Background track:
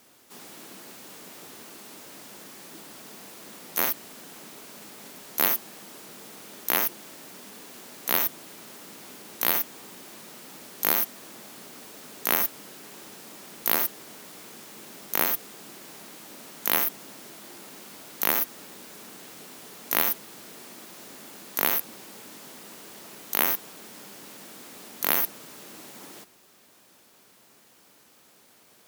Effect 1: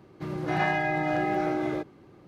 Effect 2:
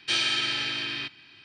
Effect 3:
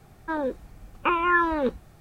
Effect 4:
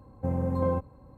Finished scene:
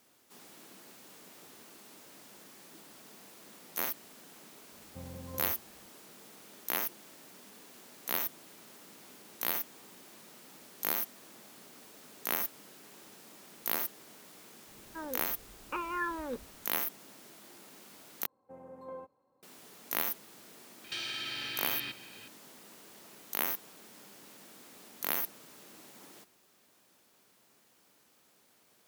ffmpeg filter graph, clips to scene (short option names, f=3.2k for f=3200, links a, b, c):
-filter_complex "[4:a]asplit=2[a][b];[0:a]volume=-9dB[c];[b]highpass=400[d];[2:a]acompressor=threshold=-35dB:ratio=6:attack=3.2:release=140:knee=1:detection=peak[e];[c]asplit=2[f][g];[f]atrim=end=18.264[h];[d]atrim=end=1.17,asetpts=PTS-STARTPTS,volume=-14.5dB[i];[g]atrim=start=19.426[j];[a]atrim=end=1.17,asetpts=PTS-STARTPTS,volume=-17.5dB,afade=t=in:d=0.004:c=hsin,afade=t=out:st=1.166:d=0.004:c=hsin,adelay=4720[k];[3:a]atrim=end=2,asetpts=PTS-STARTPTS,volume=-13.5dB,afade=t=in:d=0.004:c=hsin,afade=t=out:st=1.996:d=0.004:c=hsin,adelay=14670[l];[e]atrim=end=1.44,asetpts=PTS-STARTPTS,volume=-0.5dB,afade=t=in:d=0.004:c=hsin,afade=t=out:st=1.436:d=0.004:c=hsin,adelay=919044S[m];[h][i]acrossfade=d=0.004:c1=hsin:c2=hsin[n];[n][j]acrossfade=d=0.004:c1=hsin:c2=hsin[o];[o][k][l][m]amix=inputs=4:normalize=0"